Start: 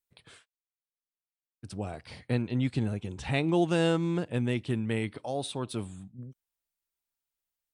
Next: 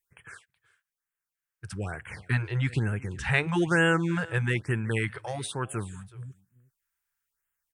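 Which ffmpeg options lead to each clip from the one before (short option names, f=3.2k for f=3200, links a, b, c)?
-af "equalizer=f=250:t=o:w=0.67:g=-10,equalizer=f=630:t=o:w=0.67:g=-8,equalizer=f=1.6k:t=o:w=0.67:g=11,equalizer=f=4k:t=o:w=0.67:g=-7,aecho=1:1:373:0.0841,afftfilt=real='re*(1-between(b*sr/1024,210*pow(4900/210,0.5+0.5*sin(2*PI*1.1*pts/sr))/1.41,210*pow(4900/210,0.5+0.5*sin(2*PI*1.1*pts/sr))*1.41))':imag='im*(1-between(b*sr/1024,210*pow(4900/210,0.5+0.5*sin(2*PI*1.1*pts/sr))/1.41,210*pow(4900/210,0.5+0.5*sin(2*PI*1.1*pts/sr))*1.41))':win_size=1024:overlap=0.75,volume=5dB"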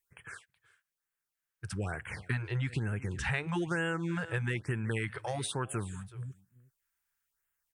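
-af "acompressor=threshold=-30dB:ratio=5"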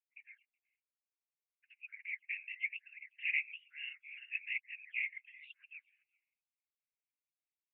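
-af "afftdn=nr=15:nf=-48,afftfilt=real='hypot(re,im)*cos(2*PI*random(0))':imag='hypot(re,im)*sin(2*PI*random(1))':win_size=512:overlap=0.75,asuperpass=centerf=2400:order=8:qfactor=3.3,volume=11.5dB"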